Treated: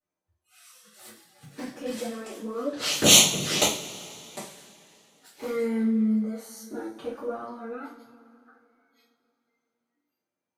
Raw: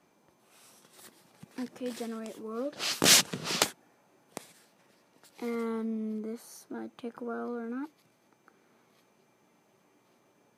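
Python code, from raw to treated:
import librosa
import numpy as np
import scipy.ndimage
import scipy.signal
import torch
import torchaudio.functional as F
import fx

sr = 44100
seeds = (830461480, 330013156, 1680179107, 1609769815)

y = fx.noise_reduce_blind(x, sr, reduce_db=27)
y = fx.env_flanger(y, sr, rest_ms=11.5, full_db=-28.0)
y = fx.rev_double_slope(y, sr, seeds[0], early_s=0.36, late_s=3.1, knee_db=-22, drr_db=-9.5)
y = F.gain(torch.from_numpy(y), -1.5).numpy()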